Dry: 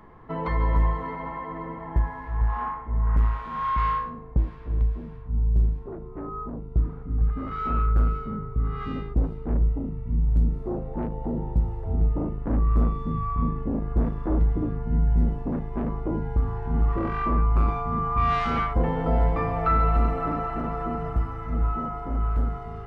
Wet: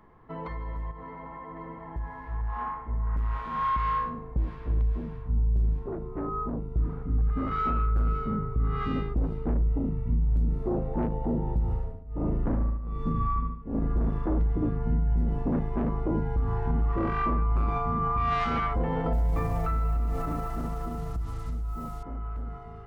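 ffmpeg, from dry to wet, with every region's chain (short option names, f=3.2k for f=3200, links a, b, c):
-filter_complex "[0:a]asettb=1/sr,asplit=3[a][b][c];[a]atrim=end=0.914[d];[b]atrim=start=0.91:end=1.57,asetpts=PTS-STARTPTS,afade=t=in:d=0.004:c=qsin,afade=t=out:st=0.656:d=0.004:c=qsin,lowpass=f=2.4k:p=1,acompressor=threshold=-30dB:ratio=6:attack=3.2:release=140:knee=1:detection=peak[e];[c]atrim=start=1.566[f];[d][e]acrossfade=d=0.004:c1=hsin:c2=qsin[g];[g][f]acrossfade=d=0.004:c1=qsin:c2=hsin,asettb=1/sr,asplit=3[h][i][j];[h]atrim=end=11.634[k];[i]atrim=start=11.63:end=14.1,asetpts=PTS-STARTPTS,afade=t=in:d=0.004:c=qsin,afade=t=out:st=2.466:d=0.004:c=qsin,tremolo=f=1.3:d=1,aecho=1:1:73|146|219|292|365:0.596|0.238|0.0953|0.0381|0.0152,atrim=end_sample=108927[l];[j]atrim=start=14.096[m];[k][l]acrossfade=d=0.004:c1=hsin:c2=qsin[n];[n][m]acrossfade=d=0.004:c1=qsin:c2=hsin,asettb=1/sr,asplit=3[o][p][q];[o]atrim=end=19.134[r];[p]atrim=start=19.13:end=22.03,asetpts=PTS-STARTPTS,afade=t=in:d=0.004:c=qsin,afade=t=out:st=2.896:d=0.004:c=qsin,lowshelf=f=160:g=11,acrusher=bits=6:mix=0:aa=0.5[s];[q]atrim=start=22.026[t];[r][s]acrossfade=d=0.004:c1=hsin:c2=qsin[u];[u][t]acrossfade=d=0.004:c1=qsin:c2=hsin,alimiter=limit=-21dB:level=0:latency=1:release=101,dynaudnorm=f=300:g=21:m=9.5dB,volume=-7dB"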